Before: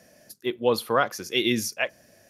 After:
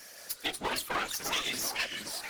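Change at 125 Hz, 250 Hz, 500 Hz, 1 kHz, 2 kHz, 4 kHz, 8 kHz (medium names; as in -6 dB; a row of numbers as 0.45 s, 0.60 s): -13.5 dB, -15.0 dB, -16.0 dB, -7.0 dB, -4.5 dB, -3.0 dB, +0.5 dB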